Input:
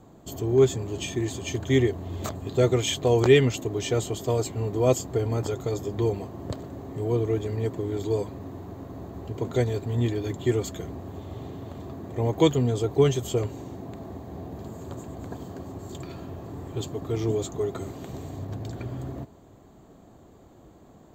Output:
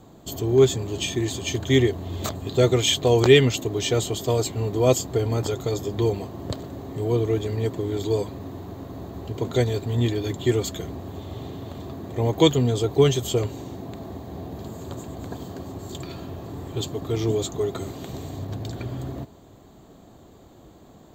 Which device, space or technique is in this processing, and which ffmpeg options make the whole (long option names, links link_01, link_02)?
presence and air boost: -af "equalizer=frequency=3800:width_type=o:width=0.88:gain=6,highshelf=frequency=11000:gain=6.5,volume=2.5dB"